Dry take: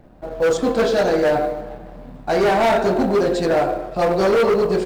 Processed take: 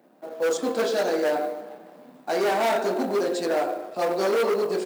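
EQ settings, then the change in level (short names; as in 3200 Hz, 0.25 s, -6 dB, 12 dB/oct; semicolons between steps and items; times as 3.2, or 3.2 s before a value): HPF 230 Hz 24 dB/oct; high shelf 7300 Hz +11.5 dB; -6.5 dB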